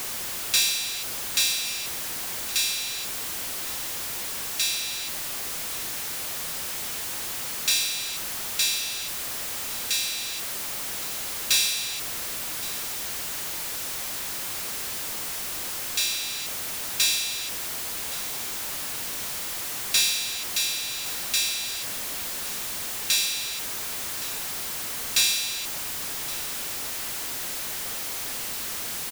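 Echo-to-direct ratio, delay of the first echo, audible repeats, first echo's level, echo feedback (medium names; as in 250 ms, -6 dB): -17.0 dB, 1119 ms, 1, -17.5 dB, 28%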